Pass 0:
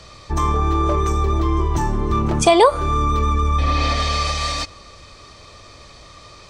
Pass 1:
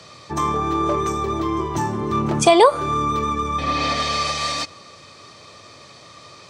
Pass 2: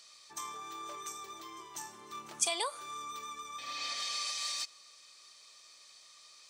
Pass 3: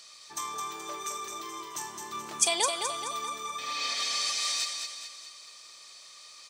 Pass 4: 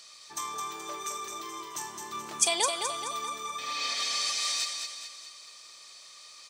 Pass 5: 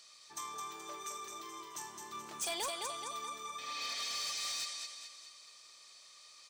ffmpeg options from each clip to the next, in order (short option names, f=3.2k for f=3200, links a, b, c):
-af "highpass=f=110:w=0.5412,highpass=f=110:w=1.3066"
-af "aderivative,volume=-5.5dB"
-af "aecho=1:1:213|426|639|852|1065|1278:0.531|0.255|0.122|0.0587|0.0282|0.0135,volume=6dB"
-af anull
-af "volume=26dB,asoftclip=hard,volume=-26dB,volume=-7.5dB"